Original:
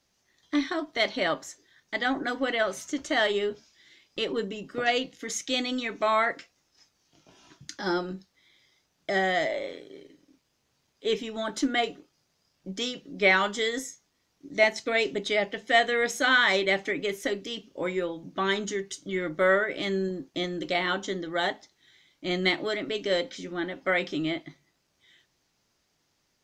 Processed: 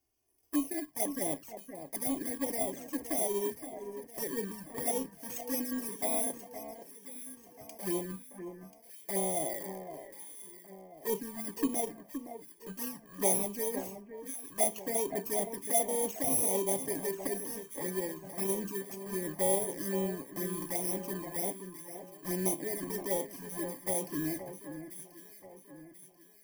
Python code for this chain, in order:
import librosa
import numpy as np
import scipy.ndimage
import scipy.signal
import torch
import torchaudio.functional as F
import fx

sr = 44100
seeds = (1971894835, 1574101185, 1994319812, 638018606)

y = fx.bit_reversed(x, sr, seeds[0], block=32)
y = fx.peak_eq(y, sr, hz=3800.0, db=-9.0, octaves=1.5)
y = fx.env_flanger(y, sr, rest_ms=2.8, full_db=-23.5)
y = fx.echo_alternate(y, sr, ms=518, hz=2000.0, feedback_pct=64, wet_db=-9.0)
y = y * 10.0 ** (-3.0 / 20.0)